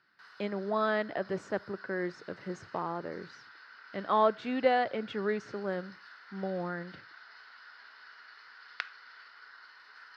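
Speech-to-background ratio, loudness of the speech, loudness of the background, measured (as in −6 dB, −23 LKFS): 17.5 dB, −33.0 LKFS, −50.5 LKFS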